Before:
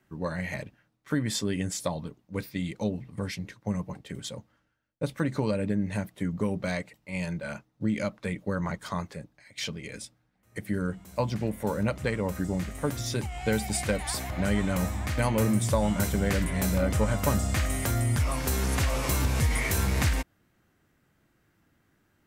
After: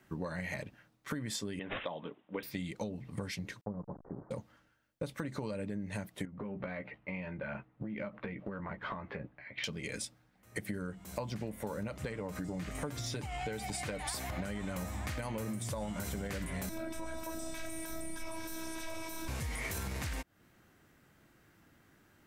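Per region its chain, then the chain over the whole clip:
1.59–2.43 HPF 300 Hz + careless resampling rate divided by 6×, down none, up filtered
3.61–4.31 level-crossing sampler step -40.5 dBFS + Gaussian blur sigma 9.9 samples + low shelf 300 Hz -10.5 dB
6.25–9.64 LPF 2600 Hz 24 dB/oct + compressor 12:1, threshold -38 dBFS + doubler 15 ms -7 dB
12.12–14.08 high shelf 9300 Hz -8.5 dB + comb 6.7 ms, depth 37% + compressor 2:1, threshold -33 dBFS
16.69–19.28 ripple EQ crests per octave 1.6, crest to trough 9 dB + robotiser 324 Hz
whole clip: low shelf 220 Hz -3.5 dB; limiter -20.5 dBFS; compressor 10:1, threshold -40 dBFS; gain +5 dB

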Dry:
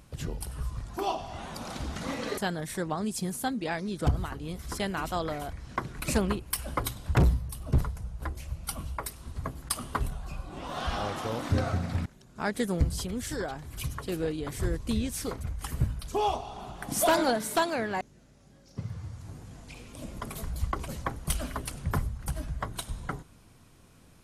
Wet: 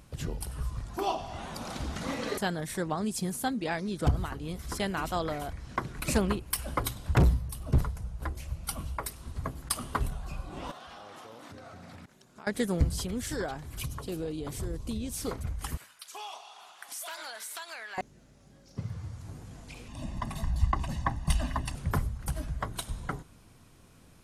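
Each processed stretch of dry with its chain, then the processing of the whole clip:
10.71–12.47 HPF 310 Hz 6 dB/oct + compressor 8:1, threshold -44 dBFS
13.85–15.24 bell 1800 Hz -7.5 dB 0.85 oct + compressor 2.5:1, threshold -32 dBFS
15.77–17.98 HPF 1400 Hz + compressor 5:1, threshold -37 dBFS
19.88–21.75 air absorption 56 m + comb 1.1 ms, depth 83%
whole clip: dry

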